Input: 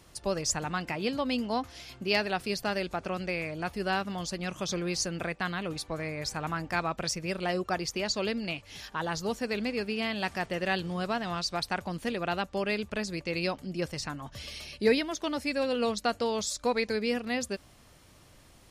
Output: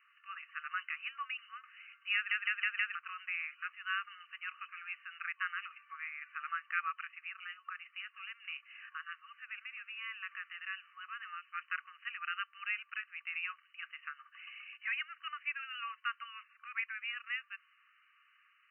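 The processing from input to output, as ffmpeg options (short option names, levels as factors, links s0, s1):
-filter_complex "[0:a]asettb=1/sr,asplit=3[s0][s1][s2];[s0]atrim=end=7.274[s3];[s1]atrim=start=7.27:end=11.45,asetpts=PTS-STARTPTS,afade=t=in:d=0.004:c=qsin,afade=t=out:st=4.176:d=0.004:c=qsin,acompressor=threshold=0.0224:ratio=2.5:attack=3.2:release=140:knee=1:detection=peak[s4];[s2]atrim=start=11.446[s5];[s3][s4]acrossfade=d=0.004:c1=hsin:c2=qsin[s6];[s6][s5]acrossfade=d=0.004:c1=qsin:c2=hsin,asplit=6[s7][s8][s9][s10][s11][s12];[s7]atrim=end=2.312[s13];[s8]atrim=start=2.148:end=2.312[s14];[s9]atrim=start=2.148:end=2.312[s15];[s10]atrim=start=2.148:end=2.312[s16];[s11]atrim=start=2.148:end=2.312[s17];[s12]atrim=start=2.948[s18];[s13][s14]acrossfade=d=0.004:c1=hsin:c2=hsin[s19];[s19][s15]acrossfade=d=0.004:c1=hsin:c2=hsin[s20];[s20][s16]acrossfade=d=0.004:c1=hsin:c2=hsin[s21];[s21][s17]acrossfade=d=0.004:c1=hsin:c2=hsin[s22];[s22][s18]acrossfade=d=0.004:c1=hsin:c2=hsin,afftfilt=real='re*between(b*sr/4096,1100,3000)':imag='im*between(b*sr/4096,1100,3000)':win_size=4096:overlap=0.75,volume=0.794"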